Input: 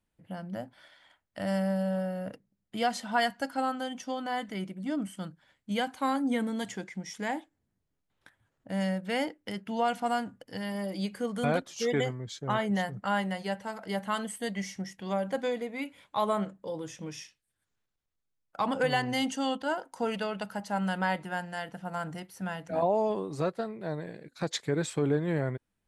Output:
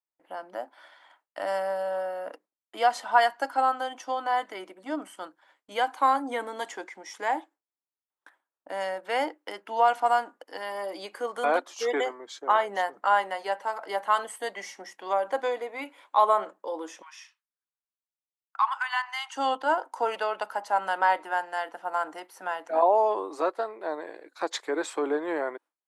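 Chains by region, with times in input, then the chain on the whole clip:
17.02–19.36 steep high-pass 950 Hz 48 dB/oct + high shelf 5000 Hz -8 dB
whole clip: Chebyshev high-pass 310 Hz, order 4; gate with hold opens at -58 dBFS; bell 1000 Hz +10.5 dB 1.3 oct

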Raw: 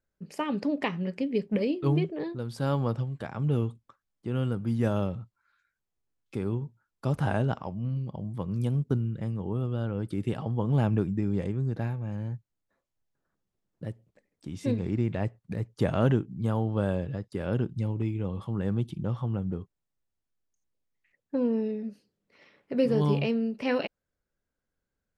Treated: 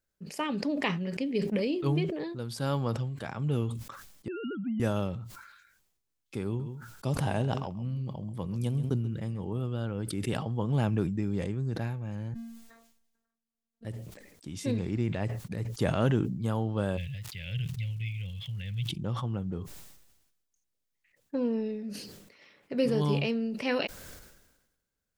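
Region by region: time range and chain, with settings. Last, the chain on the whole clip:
4.28–4.8 sine-wave speech + compressor, threshold -26 dBFS
6.46–9.6 dynamic EQ 1400 Hz, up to -8 dB, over -54 dBFS, Q 3.2 + echo 0.135 s -15 dB
12.34–13.85 robotiser 229 Hz + resonator 230 Hz, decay 0.43 s, harmonics odd
16.96–18.89 EQ curve 150 Hz 0 dB, 240 Hz -25 dB, 360 Hz -29 dB, 540 Hz -17 dB, 870 Hz -25 dB, 1200 Hz -27 dB, 2100 Hz +7 dB, 3200 Hz +8 dB, 9200 Hz -23 dB + crackle 540/s -57 dBFS
whole clip: high shelf 2500 Hz +8.5 dB; sustainer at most 52 dB/s; gain -3 dB

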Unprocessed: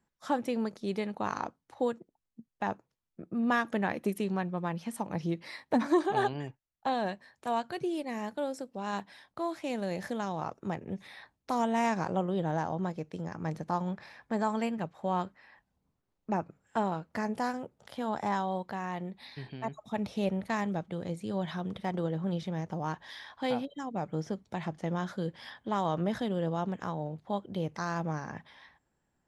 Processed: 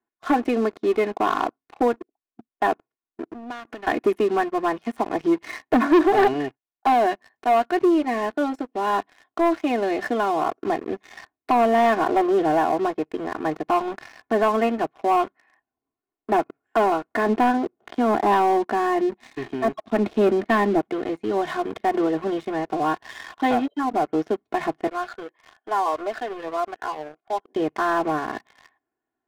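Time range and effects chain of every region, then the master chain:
3.26–3.87 HPF 62 Hz 24 dB/oct + compressor 4:1, threshold -45 dBFS
17.26–20.81 LPF 5000 Hz + small resonant body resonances 210/340 Hz, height 8 dB
24.87–27.56 BPF 650–2400 Hz + cascading phaser rising 1.8 Hz
whole clip: three-band isolator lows -22 dB, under 160 Hz, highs -20 dB, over 2800 Hz; comb 2.8 ms, depth 98%; sample leveller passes 3

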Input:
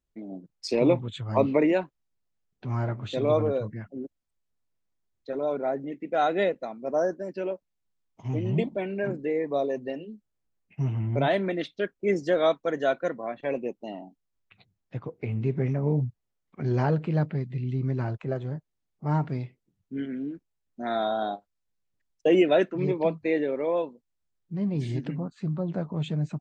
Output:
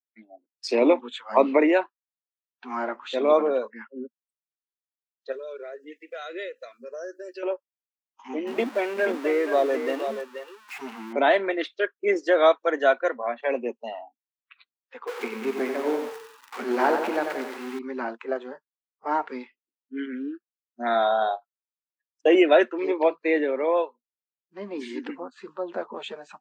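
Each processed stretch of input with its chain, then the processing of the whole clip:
5.32–7.43 high shelf 3200 Hz +9 dB + compressor 3:1, threshold -35 dBFS + fixed phaser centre 360 Hz, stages 4
8.47–11.13 zero-crossing step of -36.5 dBFS + echo 0.48 s -8 dB
15.07–17.79 zero-crossing step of -34 dBFS + lo-fi delay 91 ms, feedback 55%, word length 8-bit, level -6 dB
whole clip: Chebyshev high-pass 230 Hz, order 6; spectral noise reduction 24 dB; bell 1400 Hz +8.5 dB 2.8 oct

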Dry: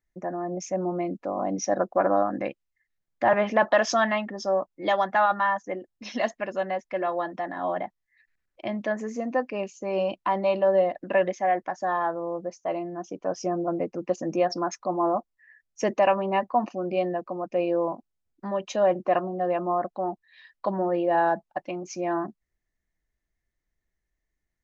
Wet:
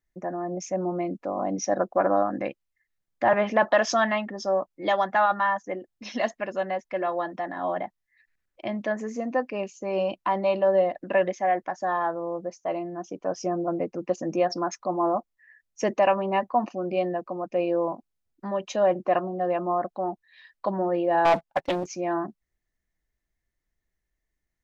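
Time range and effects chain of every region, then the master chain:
21.25–21.86 comb 7.4 ms, depth 37% + sample leveller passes 2 + Doppler distortion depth 0.39 ms
whole clip: dry

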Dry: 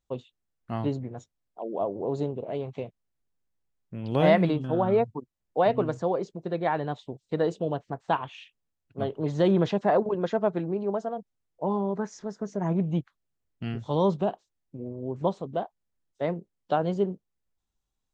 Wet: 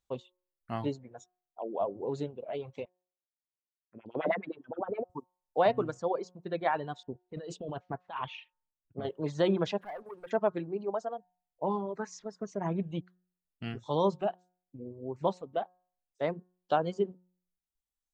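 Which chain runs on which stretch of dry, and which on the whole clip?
2.85–5.1 air absorption 120 m + LFO band-pass sine 9.6 Hz 260–2100 Hz
7.03–9.05 low-pass opened by the level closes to 910 Hz, open at -23 dBFS + bell 640 Hz -2 dB 2.3 oct + negative-ratio compressor -33 dBFS
9.8–10.31 LPF 2700 Hz 24 dB/oct + compressor 2:1, threshold -50 dBFS + sample leveller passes 2
whole clip: de-hum 181 Hz, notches 10; reverb removal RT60 2 s; low shelf 400 Hz -6.5 dB

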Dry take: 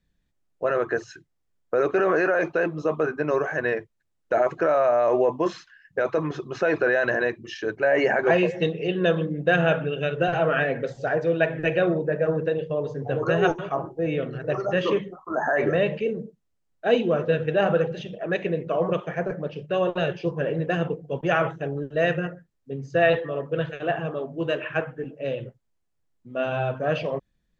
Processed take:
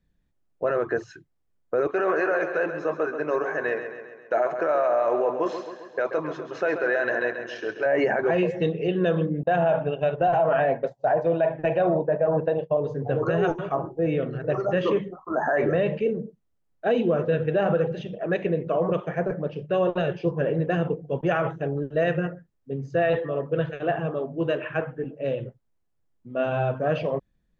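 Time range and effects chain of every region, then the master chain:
1.87–7.86 HPF 560 Hz 6 dB/oct + feedback echo 0.134 s, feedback 56%, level -9 dB
9.43–12.77 expander -25 dBFS + band shelf 790 Hz +11 dB 1 oct
whole clip: high shelf 2000 Hz -8.5 dB; limiter -16 dBFS; gain +2 dB

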